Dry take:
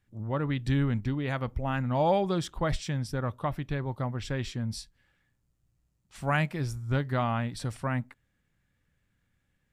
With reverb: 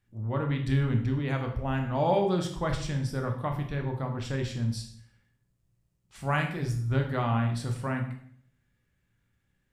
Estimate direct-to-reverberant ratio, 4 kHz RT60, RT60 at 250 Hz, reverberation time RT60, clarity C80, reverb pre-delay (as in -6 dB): 2.5 dB, 0.55 s, 0.80 s, 0.60 s, 11.0 dB, 17 ms